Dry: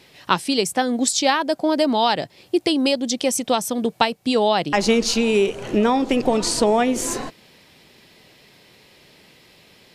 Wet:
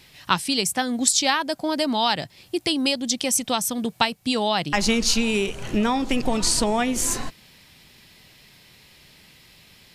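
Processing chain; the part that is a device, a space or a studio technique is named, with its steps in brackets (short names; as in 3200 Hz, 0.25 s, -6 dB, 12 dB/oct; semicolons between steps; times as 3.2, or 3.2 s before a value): smiley-face EQ (low shelf 83 Hz +9 dB; bell 450 Hz -8.5 dB 1.7 oct; high shelf 8500 Hz +5.5 dB)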